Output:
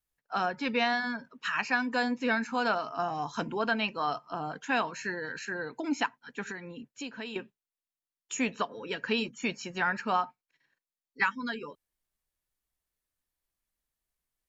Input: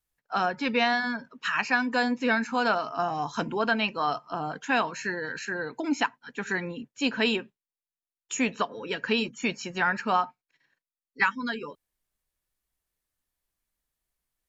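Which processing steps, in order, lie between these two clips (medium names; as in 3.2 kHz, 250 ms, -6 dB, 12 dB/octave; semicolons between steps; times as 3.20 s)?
6.50–7.36 s: compression 4:1, threshold -35 dBFS, peak gain reduction 13 dB; trim -3.5 dB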